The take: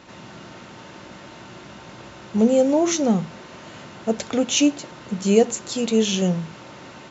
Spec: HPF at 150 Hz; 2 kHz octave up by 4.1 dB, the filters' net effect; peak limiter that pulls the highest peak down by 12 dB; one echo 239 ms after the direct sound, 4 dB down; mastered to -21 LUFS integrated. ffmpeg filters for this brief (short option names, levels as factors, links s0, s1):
-af "highpass=150,equalizer=f=2000:t=o:g=5.5,alimiter=limit=0.178:level=0:latency=1,aecho=1:1:239:0.631,volume=1.5"